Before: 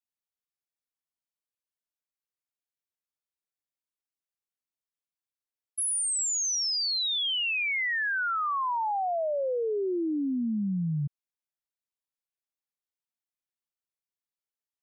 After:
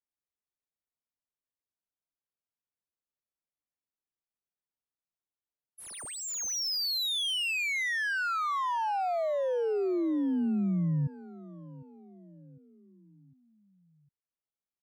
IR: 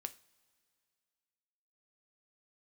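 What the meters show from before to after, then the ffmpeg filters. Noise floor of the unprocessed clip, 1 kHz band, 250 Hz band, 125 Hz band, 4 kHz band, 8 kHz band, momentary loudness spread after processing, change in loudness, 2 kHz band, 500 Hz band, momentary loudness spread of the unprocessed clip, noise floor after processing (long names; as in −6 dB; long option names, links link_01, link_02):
below −85 dBFS, −1.5 dB, +0.5 dB, +0.5 dB, −2.5 dB, −7.5 dB, 19 LU, −2.0 dB, −2.0 dB, −0.5 dB, 5 LU, below −85 dBFS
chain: -filter_complex "[0:a]lowshelf=frequency=480:gain=3,adynamicsmooth=sensitivity=6.5:basefreq=1900,asplit=2[link_01][link_02];[link_02]aecho=0:1:754|1508|2262|3016:0.112|0.055|0.0269|0.0132[link_03];[link_01][link_03]amix=inputs=2:normalize=0,volume=-2dB"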